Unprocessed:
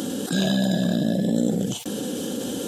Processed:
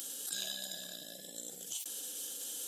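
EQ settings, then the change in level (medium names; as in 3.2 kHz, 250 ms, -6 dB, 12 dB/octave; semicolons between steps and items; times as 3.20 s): differentiator; peaking EQ 220 Hz -7.5 dB 0.3 oct; -4.0 dB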